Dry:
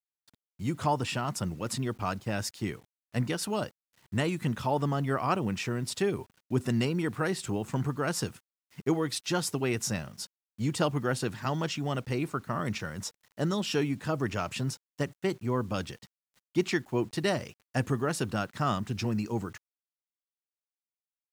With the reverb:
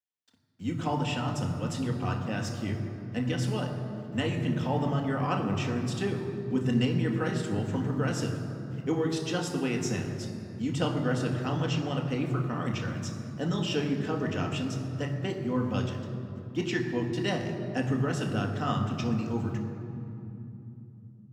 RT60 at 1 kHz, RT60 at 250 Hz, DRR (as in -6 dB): 2.7 s, 4.8 s, 1.0 dB